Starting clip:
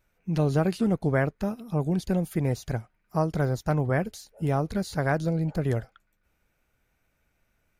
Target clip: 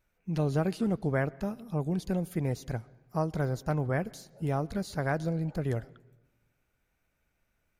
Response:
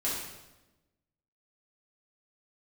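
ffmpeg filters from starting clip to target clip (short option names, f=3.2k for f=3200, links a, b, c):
-filter_complex "[0:a]asplit=2[a][b];[1:a]atrim=start_sample=2205,lowpass=5.4k,adelay=114[c];[b][c]afir=irnorm=-1:irlink=0,volume=-30dB[d];[a][d]amix=inputs=2:normalize=0,volume=-4.5dB"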